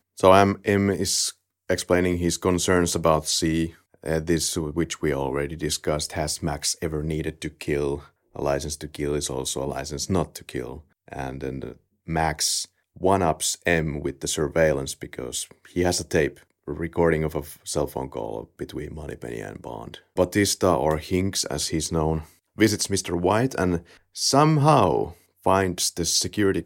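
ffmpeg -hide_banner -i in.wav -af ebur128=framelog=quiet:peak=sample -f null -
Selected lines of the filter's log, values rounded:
Integrated loudness:
  I:         -23.9 LUFS
  Threshold: -34.4 LUFS
Loudness range:
  LRA:         6.8 LU
  Threshold: -45.0 LUFS
  LRA low:   -28.6 LUFS
  LRA high:  -21.8 LUFS
Sample peak:
  Peak:       -2.8 dBFS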